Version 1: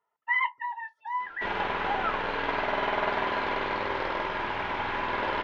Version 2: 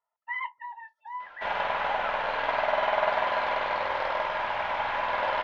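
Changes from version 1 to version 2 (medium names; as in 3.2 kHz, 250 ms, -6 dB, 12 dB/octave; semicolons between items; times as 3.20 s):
speech -8.0 dB; master: add resonant low shelf 480 Hz -7 dB, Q 3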